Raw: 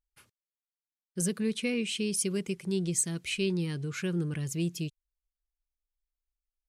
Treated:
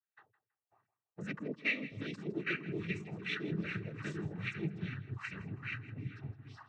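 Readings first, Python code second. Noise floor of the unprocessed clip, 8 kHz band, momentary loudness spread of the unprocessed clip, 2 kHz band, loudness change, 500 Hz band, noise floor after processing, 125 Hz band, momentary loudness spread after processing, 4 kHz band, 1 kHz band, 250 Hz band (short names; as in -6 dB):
under -85 dBFS, -31.5 dB, 5 LU, +2.0 dB, -8.0 dB, -9.5 dB, under -85 dBFS, -6.0 dB, 9 LU, -9.5 dB, +2.5 dB, -8.5 dB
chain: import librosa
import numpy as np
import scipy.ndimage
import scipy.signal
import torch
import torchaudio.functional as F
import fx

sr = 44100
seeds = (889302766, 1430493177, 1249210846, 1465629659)

y = fx.spec_ripple(x, sr, per_octave=1.1, drift_hz=0.4, depth_db=7)
y = fx.echo_pitch(y, sr, ms=506, semitones=-3, count=3, db_per_echo=-6.0)
y = fx.peak_eq(y, sr, hz=300.0, db=-9.0, octaves=0.78)
y = fx.filter_lfo_lowpass(y, sr, shape='sine', hz=2.5, low_hz=600.0, high_hz=2100.0, q=4.6)
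y = fx.noise_vocoder(y, sr, seeds[0], bands=12)
y = fx.echo_feedback(y, sr, ms=162, feedback_pct=24, wet_db=-17)
y = fx.dynamic_eq(y, sr, hz=820.0, q=0.97, threshold_db=-49.0, ratio=4.0, max_db=-7)
y = y + 0.32 * np.pad(y, (int(2.6 * sr / 1000.0), 0))[:len(y)]
y = y * librosa.db_to_amplitude(-5.0)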